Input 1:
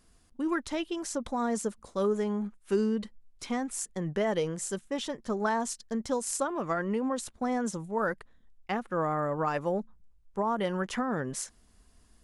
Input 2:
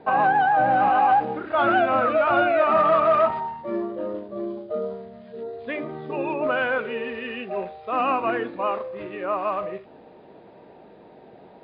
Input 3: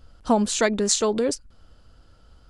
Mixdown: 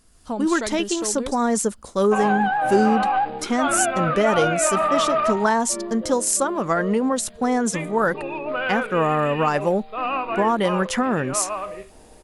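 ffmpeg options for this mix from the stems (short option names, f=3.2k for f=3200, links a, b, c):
-filter_complex "[0:a]equalizer=f=10k:t=o:w=1.7:g=5,volume=3dB[a];[1:a]highshelf=f=2.2k:g=9.5,adelay=2050,volume=-10dB[b];[2:a]volume=-14.5dB[c];[a][b][c]amix=inputs=3:normalize=0,dynaudnorm=f=130:g=3:m=6dB"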